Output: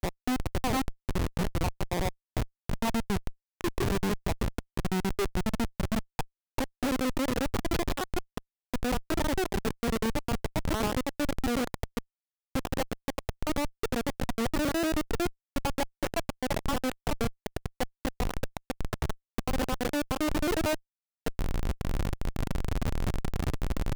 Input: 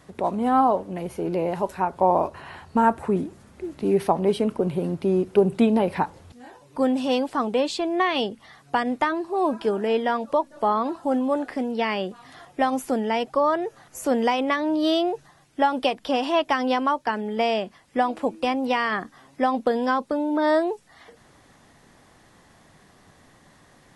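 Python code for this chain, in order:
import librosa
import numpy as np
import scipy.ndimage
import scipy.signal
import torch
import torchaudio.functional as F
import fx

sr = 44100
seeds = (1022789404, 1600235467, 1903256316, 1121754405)

y = fx.block_reorder(x, sr, ms=91.0, group=3)
y = fx.recorder_agc(y, sr, target_db=-12.5, rise_db_per_s=48.0, max_gain_db=30)
y = fx.schmitt(y, sr, flips_db=-16.5)
y = y * librosa.db_to_amplitude(-4.5)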